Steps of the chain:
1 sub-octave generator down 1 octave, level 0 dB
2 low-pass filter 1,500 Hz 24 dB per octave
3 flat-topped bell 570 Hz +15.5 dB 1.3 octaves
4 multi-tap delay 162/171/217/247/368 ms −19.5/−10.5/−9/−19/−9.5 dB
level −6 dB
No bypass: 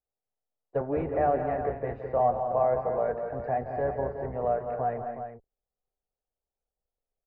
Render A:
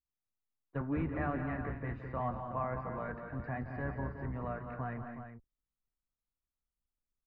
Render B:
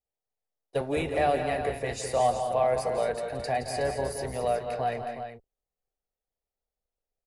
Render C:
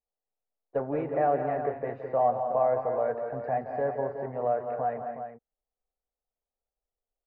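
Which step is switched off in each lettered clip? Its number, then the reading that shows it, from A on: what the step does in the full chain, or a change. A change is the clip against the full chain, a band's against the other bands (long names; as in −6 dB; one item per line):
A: 3, 500 Hz band −14.5 dB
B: 2, 2 kHz band +7.5 dB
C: 1, 125 Hz band −3.5 dB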